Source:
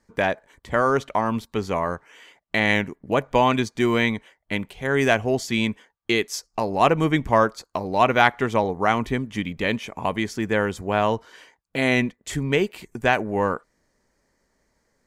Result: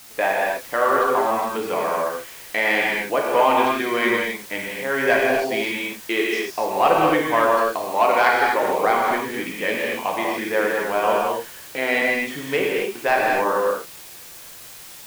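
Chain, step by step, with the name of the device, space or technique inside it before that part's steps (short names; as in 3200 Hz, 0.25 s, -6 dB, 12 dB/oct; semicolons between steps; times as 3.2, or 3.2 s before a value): tape answering machine (BPF 380–3000 Hz; soft clip -7.5 dBFS, distortion -19 dB; wow and flutter; white noise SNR 19 dB); 7.88–8.63 low shelf 160 Hz -11.5 dB; non-linear reverb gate 0.3 s flat, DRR -3.5 dB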